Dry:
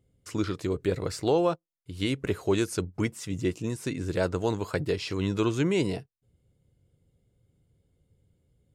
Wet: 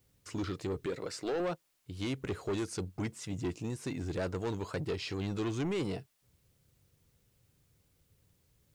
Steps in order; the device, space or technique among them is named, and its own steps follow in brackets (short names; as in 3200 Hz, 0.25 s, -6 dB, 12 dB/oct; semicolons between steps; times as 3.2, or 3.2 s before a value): 0.86–1.4 Bessel high-pass 270 Hz, order 2; compact cassette (soft clip -25.5 dBFS, distortion -10 dB; LPF 8700 Hz 12 dB/oct; wow and flutter; white noise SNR 38 dB); gain -3.5 dB